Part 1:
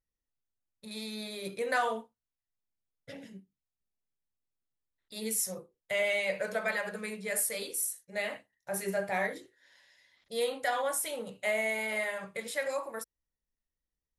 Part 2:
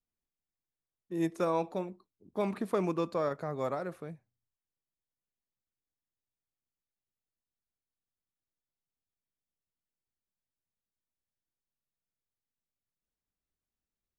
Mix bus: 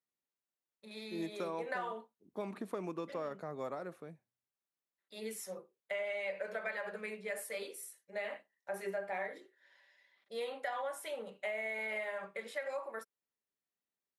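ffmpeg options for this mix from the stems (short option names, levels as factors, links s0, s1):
-filter_complex "[0:a]highpass=180,bass=f=250:g=-10,treble=f=4000:g=-14,aecho=1:1:5.1:0.33,volume=0.75[s0];[1:a]highpass=170,bandreject=f=4900:w=21,volume=0.531[s1];[s0][s1]amix=inputs=2:normalize=0,acompressor=threshold=0.0178:ratio=6"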